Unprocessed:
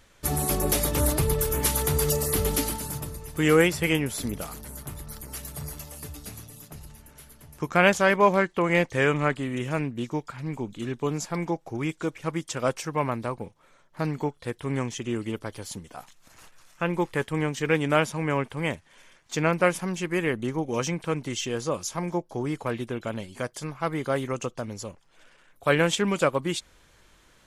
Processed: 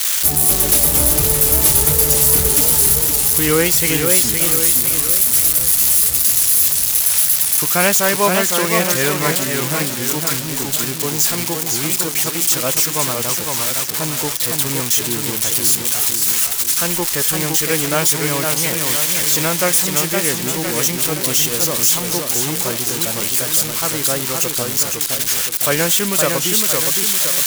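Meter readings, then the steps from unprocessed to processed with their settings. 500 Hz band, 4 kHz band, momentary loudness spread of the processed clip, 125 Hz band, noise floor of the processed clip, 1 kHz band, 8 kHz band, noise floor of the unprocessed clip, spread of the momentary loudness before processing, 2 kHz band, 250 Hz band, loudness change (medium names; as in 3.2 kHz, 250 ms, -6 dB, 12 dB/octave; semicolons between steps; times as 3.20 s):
+4.5 dB, +16.0 dB, 7 LU, +4.5 dB, -23 dBFS, +5.0 dB, +20.5 dB, -59 dBFS, 16 LU, +6.5 dB, +4.0 dB, +13.0 dB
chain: zero-crossing glitches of -11 dBFS; modulated delay 512 ms, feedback 50%, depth 169 cents, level -4.5 dB; trim +2.5 dB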